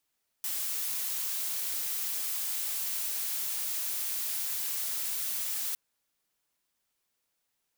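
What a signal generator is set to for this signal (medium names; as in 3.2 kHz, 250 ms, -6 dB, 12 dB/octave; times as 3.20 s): noise blue, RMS -33 dBFS 5.31 s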